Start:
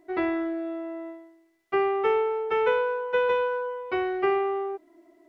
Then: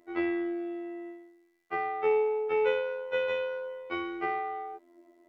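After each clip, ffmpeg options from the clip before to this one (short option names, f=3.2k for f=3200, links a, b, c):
-af "equalizer=f=84:t=o:w=0.4:g=-4.5,afftfilt=real='hypot(re,im)*cos(PI*b)':imag='0':win_size=2048:overlap=0.75"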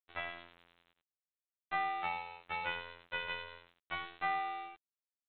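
-af "afftfilt=real='re*(1-between(b*sr/4096,240,520))':imag='im*(1-between(b*sr/4096,240,520))':win_size=4096:overlap=0.75,aresample=8000,aeval=exprs='sgn(val(0))*max(abs(val(0))-0.0075,0)':c=same,aresample=44100"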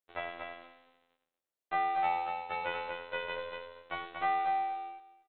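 -filter_complex "[0:a]equalizer=f=510:t=o:w=1.8:g=10.5,asplit=2[a][b];[b]aecho=0:1:236|472|708:0.596|0.0953|0.0152[c];[a][c]amix=inputs=2:normalize=0,volume=-2dB"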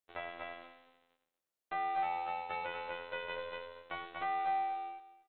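-af "alimiter=level_in=1dB:limit=-24dB:level=0:latency=1:release=426,volume=-1dB"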